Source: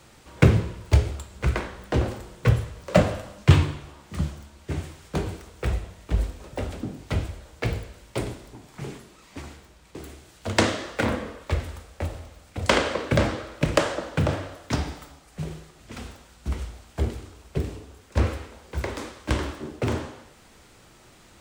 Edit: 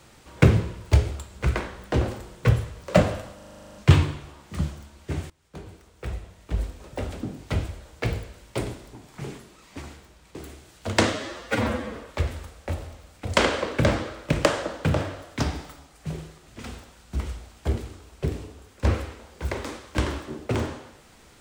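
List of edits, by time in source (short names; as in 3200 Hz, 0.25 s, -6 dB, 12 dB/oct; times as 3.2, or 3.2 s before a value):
3.35 stutter 0.04 s, 11 plays
4.9–6.76 fade in, from -23 dB
10.73–11.28 stretch 1.5×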